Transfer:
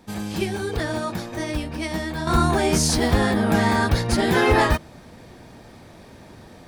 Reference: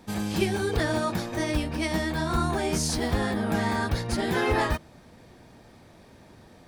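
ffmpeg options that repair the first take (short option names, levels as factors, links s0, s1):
-af "asetnsamples=n=441:p=0,asendcmd='2.27 volume volume -7dB',volume=1"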